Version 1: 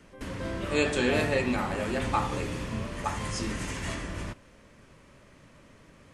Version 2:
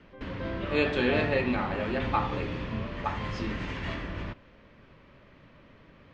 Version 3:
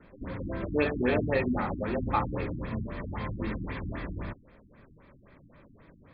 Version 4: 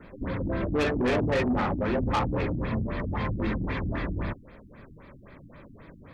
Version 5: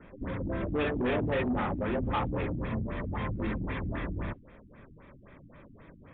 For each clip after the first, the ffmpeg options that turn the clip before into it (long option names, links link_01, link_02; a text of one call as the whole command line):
ffmpeg -i in.wav -af "lowpass=frequency=4000:width=0.5412,lowpass=frequency=4000:width=1.3066" out.wav
ffmpeg -i in.wav -af "bandreject=frequency=2900:width=5,afftfilt=real='re*lt(b*sr/1024,320*pow(5200/320,0.5+0.5*sin(2*PI*3.8*pts/sr)))':imag='im*lt(b*sr/1024,320*pow(5200/320,0.5+0.5*sin(2*PI*3.8*pts/sr)))':win_size=1024:overlap=0.75" out.wav
ffmpeg -i in.wav -af "asoftclip=type=tanh:threshold=-28dB,volume=7dB" out.wav
ffmpeg -i in.wav -af "volume=-3.5dB" -ar 8000 -c:a libmp3lame -b:a 64k out.mp3